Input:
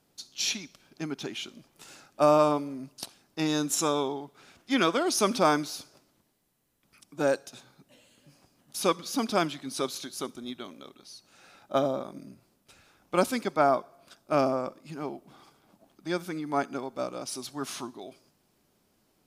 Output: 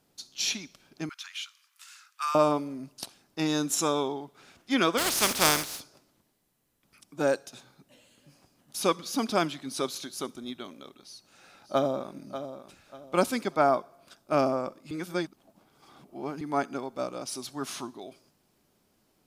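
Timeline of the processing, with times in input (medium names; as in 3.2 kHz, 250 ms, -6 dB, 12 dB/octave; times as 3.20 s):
1.09–2.35 s: steep high-pass 1.1 kHz 48 dB/octave
4.97–5.79 s: spectral contrast reduction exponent 0.33
10.99–12.15 s: echo throw 590 ms, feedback 30%, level -11 dB
14.91–16.41 s: reverse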